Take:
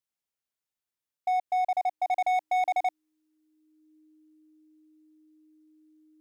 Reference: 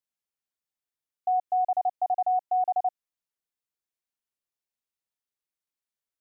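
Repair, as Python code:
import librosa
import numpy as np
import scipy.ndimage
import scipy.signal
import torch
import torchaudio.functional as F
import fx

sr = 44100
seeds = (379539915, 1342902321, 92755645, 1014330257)

y = fx.fix_declip(x, sr, threshold_db=-23.0)
y = fx.notch(y, sr, hz=310.0, q=30.0)
y = fx.fix_level(y, sr, at_s=2.11, step_db=-3.5)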